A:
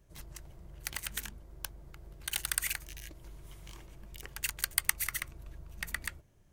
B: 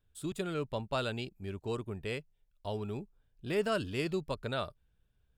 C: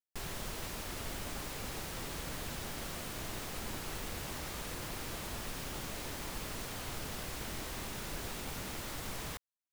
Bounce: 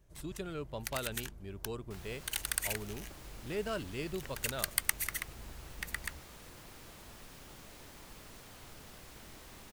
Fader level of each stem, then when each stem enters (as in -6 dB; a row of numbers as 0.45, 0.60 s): -2.0, -5.5, -11.0 dB; 0.00, 0.00, 1.75 s